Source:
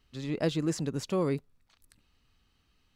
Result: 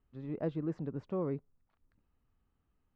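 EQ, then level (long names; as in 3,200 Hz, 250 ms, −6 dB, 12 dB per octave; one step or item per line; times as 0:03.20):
low-pass filter 1,200 Hz 12 dB per octave
−6.0 dB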